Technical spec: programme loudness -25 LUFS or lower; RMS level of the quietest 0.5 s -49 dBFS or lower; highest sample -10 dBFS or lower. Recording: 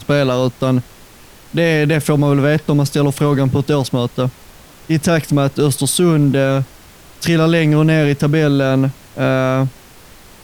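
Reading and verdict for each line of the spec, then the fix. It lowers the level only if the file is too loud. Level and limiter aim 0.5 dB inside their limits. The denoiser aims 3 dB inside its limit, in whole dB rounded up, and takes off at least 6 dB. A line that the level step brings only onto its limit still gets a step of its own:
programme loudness -15.5 LUFS: fail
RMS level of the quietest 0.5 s -41 dBFS: fail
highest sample -4.5 dBFS: fail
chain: gain -10 dB

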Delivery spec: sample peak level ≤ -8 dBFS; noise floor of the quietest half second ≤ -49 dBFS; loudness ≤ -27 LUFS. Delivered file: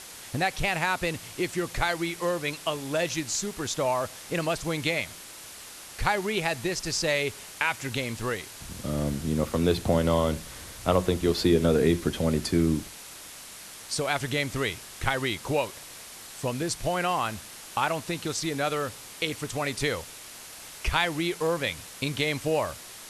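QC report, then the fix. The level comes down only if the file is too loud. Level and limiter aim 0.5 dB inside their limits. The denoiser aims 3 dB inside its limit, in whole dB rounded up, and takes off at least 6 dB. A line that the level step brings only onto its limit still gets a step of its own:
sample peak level -7.0 dBFS: fail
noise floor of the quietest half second -44 dBFS: fail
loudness -28.0 LUFS: OK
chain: denoiser 8 dB, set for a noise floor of -44 dBFS; limiter -8.5 dBFS

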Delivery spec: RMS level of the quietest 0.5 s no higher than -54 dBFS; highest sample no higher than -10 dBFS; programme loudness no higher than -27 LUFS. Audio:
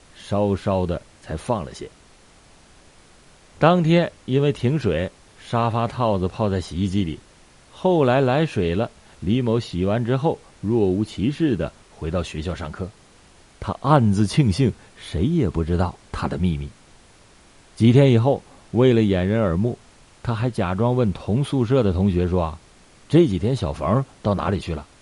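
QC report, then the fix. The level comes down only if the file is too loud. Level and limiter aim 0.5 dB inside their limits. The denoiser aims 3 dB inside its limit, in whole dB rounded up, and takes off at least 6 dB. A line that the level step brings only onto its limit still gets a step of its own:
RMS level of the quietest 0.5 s -51 dBFS: fail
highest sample -3.5 dBFS: fail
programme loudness -21.5 LUFS: fail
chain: gain -6 dB; limiter -10.5 dBFS

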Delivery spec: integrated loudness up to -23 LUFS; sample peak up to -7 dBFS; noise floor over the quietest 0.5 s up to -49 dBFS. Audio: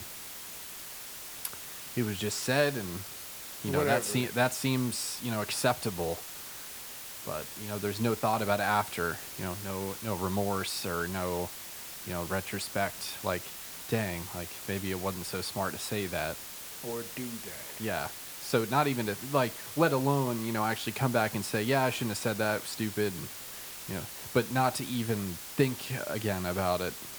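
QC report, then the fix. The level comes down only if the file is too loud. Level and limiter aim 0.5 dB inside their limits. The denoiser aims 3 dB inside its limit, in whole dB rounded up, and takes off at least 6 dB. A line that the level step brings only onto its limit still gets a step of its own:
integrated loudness -32.0 LUFS: OK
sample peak -11.5 dBFS: OK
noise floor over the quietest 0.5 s -43 dBFS: fail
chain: denoiser 9 dB, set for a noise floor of -43 dBFS

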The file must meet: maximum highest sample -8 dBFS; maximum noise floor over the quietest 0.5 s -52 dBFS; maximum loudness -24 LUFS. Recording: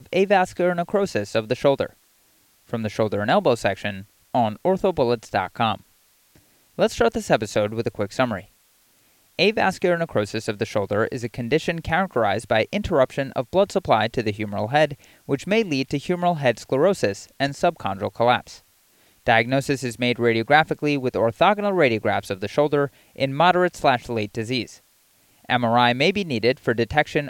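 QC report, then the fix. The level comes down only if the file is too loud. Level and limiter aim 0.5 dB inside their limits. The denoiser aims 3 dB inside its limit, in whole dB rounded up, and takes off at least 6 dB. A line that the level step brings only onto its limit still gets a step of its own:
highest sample -3.0 dBFS: fail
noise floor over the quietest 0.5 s -60 dBFS: OK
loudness -22.0 LUFS: fail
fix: gain -2.5 dB; limiter -8.5 dBFS

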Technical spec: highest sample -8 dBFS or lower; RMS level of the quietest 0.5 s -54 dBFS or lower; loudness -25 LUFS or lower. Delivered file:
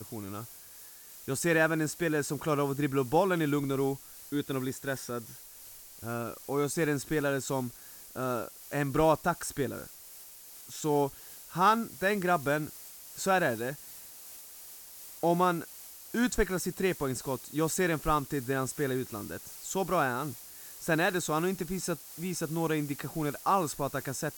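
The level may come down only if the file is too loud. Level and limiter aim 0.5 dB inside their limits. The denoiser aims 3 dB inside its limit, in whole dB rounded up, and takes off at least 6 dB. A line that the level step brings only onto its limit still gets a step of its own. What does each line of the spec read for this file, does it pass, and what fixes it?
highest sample -12.5 dBFS: OK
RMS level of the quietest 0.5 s -50 dBFS: fail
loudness -31.0 LUFS: OK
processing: denoiser 7 dB, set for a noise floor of -50 dBFS

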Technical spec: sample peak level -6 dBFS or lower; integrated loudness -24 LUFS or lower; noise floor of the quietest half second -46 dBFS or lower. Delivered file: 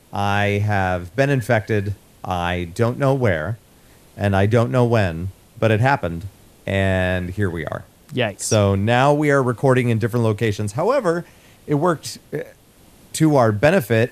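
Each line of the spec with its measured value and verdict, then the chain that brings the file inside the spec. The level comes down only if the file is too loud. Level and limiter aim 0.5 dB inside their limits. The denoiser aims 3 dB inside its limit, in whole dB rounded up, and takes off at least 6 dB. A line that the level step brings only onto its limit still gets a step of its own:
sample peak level -3.0 dBFS: fail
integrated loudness -19.5 LUFS: fail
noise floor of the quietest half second -50 dBFS: OK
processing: gain -5 dB

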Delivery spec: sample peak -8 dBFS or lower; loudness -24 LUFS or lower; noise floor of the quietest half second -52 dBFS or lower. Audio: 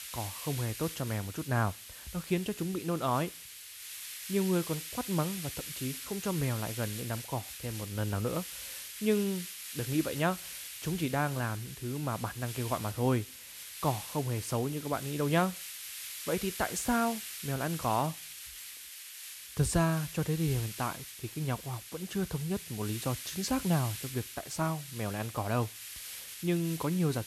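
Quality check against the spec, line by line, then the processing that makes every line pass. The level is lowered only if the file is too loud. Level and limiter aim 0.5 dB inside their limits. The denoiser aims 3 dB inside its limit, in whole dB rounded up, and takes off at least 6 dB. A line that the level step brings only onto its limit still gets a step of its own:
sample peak -14.0 dBFS: OK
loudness -33.5 LUFS: OK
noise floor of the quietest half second -48 dBFS: fail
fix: denoiser 7 dB, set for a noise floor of -48 dBFS

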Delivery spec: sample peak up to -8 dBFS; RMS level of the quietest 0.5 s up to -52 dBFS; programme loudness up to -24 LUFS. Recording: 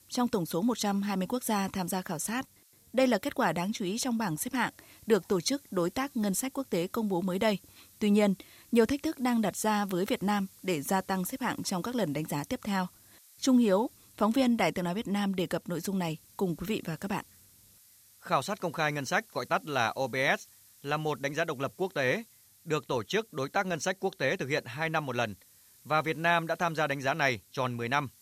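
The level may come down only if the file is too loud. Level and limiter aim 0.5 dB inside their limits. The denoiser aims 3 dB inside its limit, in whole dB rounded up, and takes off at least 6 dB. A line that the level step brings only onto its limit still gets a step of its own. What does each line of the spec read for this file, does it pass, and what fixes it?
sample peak -11.0 dBFS: OK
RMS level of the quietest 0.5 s -61 dBFS: OK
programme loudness -30.5 LUFS: OK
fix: none

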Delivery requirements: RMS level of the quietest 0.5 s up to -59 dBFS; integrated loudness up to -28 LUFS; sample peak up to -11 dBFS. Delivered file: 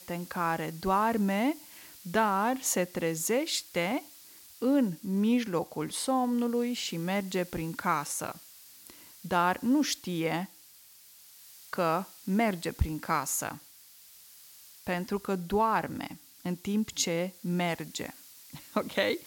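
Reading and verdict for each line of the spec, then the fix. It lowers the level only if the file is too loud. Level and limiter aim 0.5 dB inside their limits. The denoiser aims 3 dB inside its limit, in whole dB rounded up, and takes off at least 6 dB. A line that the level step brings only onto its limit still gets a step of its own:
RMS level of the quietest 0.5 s -55 dBFS: fail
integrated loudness -30.5 LUFS: OK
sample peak -13.0 dBFS: OK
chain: denoiser 7 dB, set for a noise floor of -55 dBFS

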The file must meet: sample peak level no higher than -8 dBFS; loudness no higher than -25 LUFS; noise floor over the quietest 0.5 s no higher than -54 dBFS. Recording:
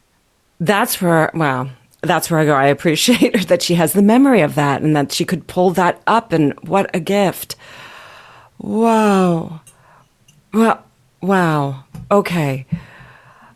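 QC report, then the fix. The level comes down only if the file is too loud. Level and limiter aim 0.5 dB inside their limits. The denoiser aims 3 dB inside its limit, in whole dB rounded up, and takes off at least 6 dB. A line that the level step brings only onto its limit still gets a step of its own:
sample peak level -2.0 dBFS: fail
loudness -15.5 LUFS: fail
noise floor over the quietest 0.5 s -60 dBFS: OK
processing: gain -10 dB

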